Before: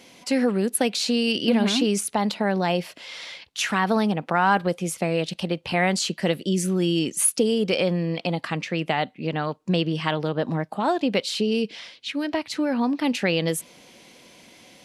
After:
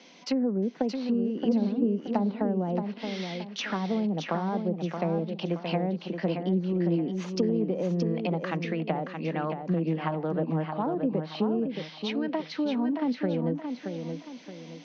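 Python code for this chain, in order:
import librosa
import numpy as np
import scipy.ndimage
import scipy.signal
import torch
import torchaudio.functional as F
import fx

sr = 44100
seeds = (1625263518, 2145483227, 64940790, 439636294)

y = fx.diode_clip(x, sr, knee_db=-15.5)
y = scipy.signal.sosfilt(scipy.signal.cheby1(5, 1.0, [160.0, 6100.0], 'bandpass', fs=sr, output='sos'), y)
y = fx.env_lowpass_down(y, sr, base_hz=490.0, full_db=-20.0)
y = fx.echo_feedback(y, sr, ms=624, feedback_pct=37, wet_db=-6.5)
y = F.gain(torch.from_numpy(y), -2.5).numpy()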